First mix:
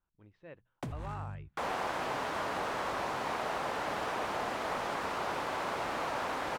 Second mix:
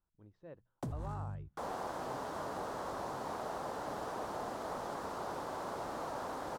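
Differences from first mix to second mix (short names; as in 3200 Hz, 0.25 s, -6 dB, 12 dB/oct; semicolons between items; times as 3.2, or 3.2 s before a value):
second sound -3.0 dB; master: add bell 2400 Hz -14 dB 1.3 oct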